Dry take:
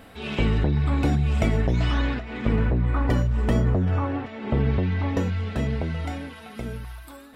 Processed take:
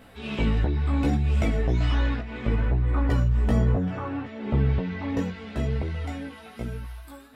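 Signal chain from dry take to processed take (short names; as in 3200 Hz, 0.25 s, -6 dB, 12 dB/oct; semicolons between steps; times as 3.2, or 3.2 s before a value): chorus voices 2, 0.68 Hz, delay 16 ms, depth 2.2 ms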